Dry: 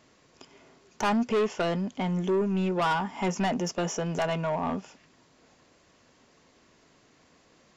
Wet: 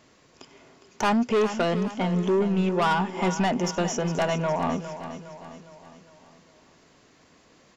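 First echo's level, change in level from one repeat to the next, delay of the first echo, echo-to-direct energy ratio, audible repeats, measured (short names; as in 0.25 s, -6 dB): -11.5 dB, -6.0 dB, 0.409 s, -10.5 dB, 4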